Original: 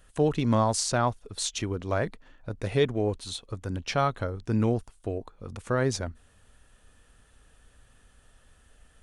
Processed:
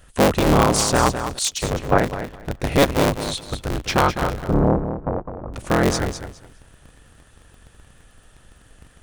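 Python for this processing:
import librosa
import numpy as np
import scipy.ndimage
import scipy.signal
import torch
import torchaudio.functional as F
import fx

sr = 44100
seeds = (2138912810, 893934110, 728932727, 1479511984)

p1 = fx.cycle_switch(x, sr, every=3, mode='inverted')
p2 = fx.lowpass(p1, sr, hz=1200.0, slope=24, at=(4.39, 5.53))
p3 = p2 + fx.echo_feedback(p2, sr, ms=207, feedback_pct=20, wet_db=-9, dry=0)
p4 = fx.band_widen(p3, sr, depth_pct=100, at=(1.39, 1.98))
y = F.gain(torch.from_numpy(p4), 7.5).numpy()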